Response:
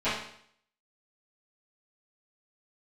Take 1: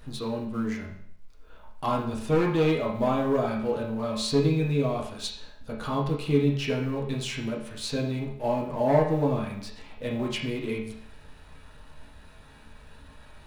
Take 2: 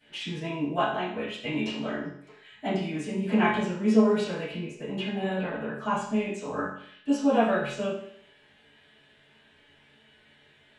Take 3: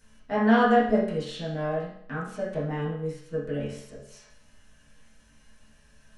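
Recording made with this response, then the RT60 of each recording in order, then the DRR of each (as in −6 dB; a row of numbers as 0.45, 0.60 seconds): 2; 0.65, 0.65, 0.65 seconds; −3.0, −17.0, −10.5 decibels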